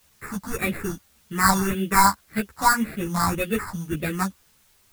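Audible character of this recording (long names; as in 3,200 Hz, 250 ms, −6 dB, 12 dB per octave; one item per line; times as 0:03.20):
aliases and images of a low sample rate 3,100 Hz, jitter 0%
phaser sweep stages 4, 1.8 Hz, lowest notch 410–1,000 Hz
a quantiser's noise floor 10 bits, dither triangular
a shimmering, thickened sound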